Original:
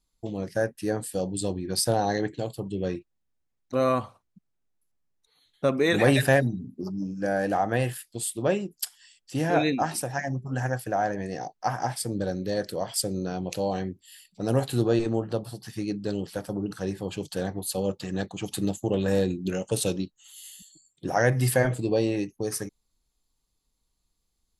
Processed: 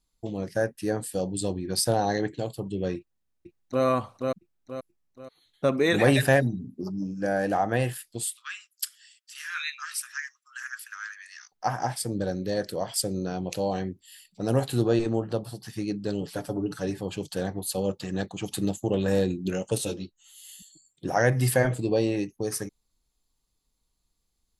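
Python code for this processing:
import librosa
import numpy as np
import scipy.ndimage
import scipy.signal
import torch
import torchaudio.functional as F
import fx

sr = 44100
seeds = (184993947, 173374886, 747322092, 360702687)

y = fx.echo_throw(x, sr, start_s=2.97, length_s=0.87, ms=480, feedback_pct=40, wet_db=-3.5)
y = fx.steep_highpass(y, sr, hz=1200.0, slope=72, at=(8.25, 11.52))
y = fx.comb(y, sr, ms=7.0, depth=0.65, at=(16.21, 17.01))
y = fx.ensemble(y, sr, at=(19.78, 20.49))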